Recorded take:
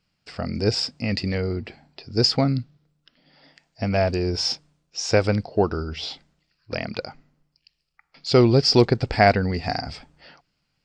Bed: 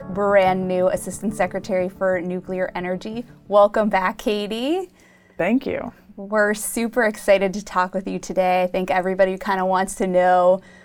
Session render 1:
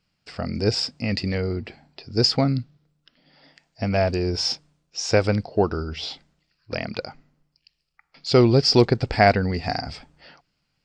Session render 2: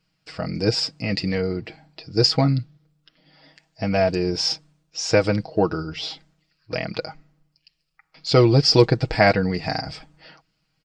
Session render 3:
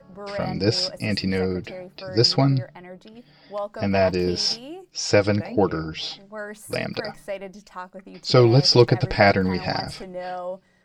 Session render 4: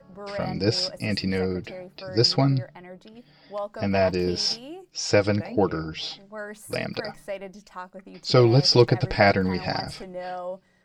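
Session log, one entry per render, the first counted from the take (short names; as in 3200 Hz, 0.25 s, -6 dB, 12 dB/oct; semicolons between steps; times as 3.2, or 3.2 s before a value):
nothing audible
comb 6.3 ms
add bed -16 dB
gain -2 dB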